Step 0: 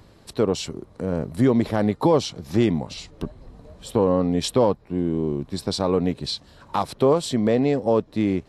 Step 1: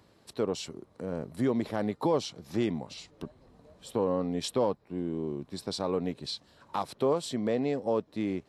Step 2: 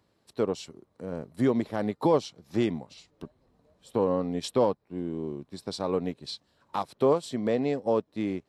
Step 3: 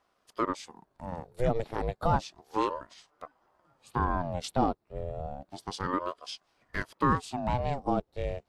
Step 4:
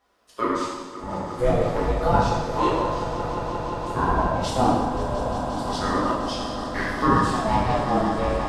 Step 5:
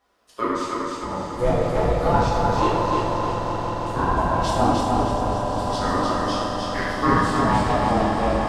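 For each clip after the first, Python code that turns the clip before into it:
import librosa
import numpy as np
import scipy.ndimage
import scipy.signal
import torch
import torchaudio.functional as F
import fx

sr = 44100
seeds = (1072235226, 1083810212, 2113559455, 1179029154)

y1 = fx.highpass(x, sr, hz=170.0, slope=6)
y1 = y1 * 10.0 ** (-8.0 / 20.0)
y2 = fx.upward_expand(y1, sr, threshold_db=-49.0, expansion=1.5)
y2 = y2 * 10.0 ** (4.5 / 20.0)
y3 = fx.ring_lfo(y2, sr, carrier_hz=560.0, swing_pct=60, hz=0.31)
y4 = fx.echo_swell(y3, sr, ms=176, loudest=5, wet_db=-14.0)
y4 = fx.rev_gated(y4, sr, seeds[0], gate_ms=360, shape='falling', drr_db=-7.5)
y5 = fx.echo_feedback(y4, sr, ms=305, feedback_pct=43, wet_db=-3.0)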